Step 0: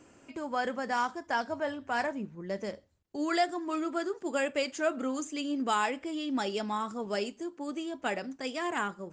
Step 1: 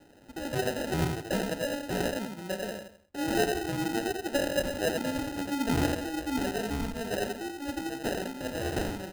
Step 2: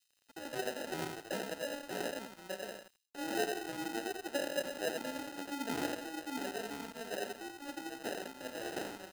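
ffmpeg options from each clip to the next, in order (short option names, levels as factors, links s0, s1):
-af "aecho=1:1:87|174|261|348:0.631|0.215|0.0729|0.0248,acrusher=samples=39:mix=1:aa=0.000001"
-filter_complex "[0:a]highpass=270,acrossover=split=3100[s0][s1];[s0]aeval=exprs='sgn(val(0))*max(abs(val(0))-0.00355,0)':c=same[s2];[s2][s1]amix=inputs=2:normalize=0,volume=0.473"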